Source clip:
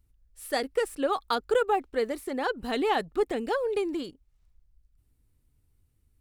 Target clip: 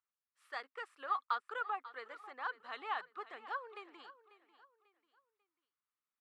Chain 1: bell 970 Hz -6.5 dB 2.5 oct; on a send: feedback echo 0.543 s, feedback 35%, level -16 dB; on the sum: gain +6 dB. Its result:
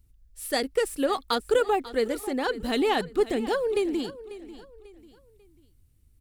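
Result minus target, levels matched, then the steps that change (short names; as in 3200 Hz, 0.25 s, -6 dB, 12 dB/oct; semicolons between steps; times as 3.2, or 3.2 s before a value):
1000 Hz band -6.5 dB
add first: ladder band-pass 1300 Hz, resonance 60%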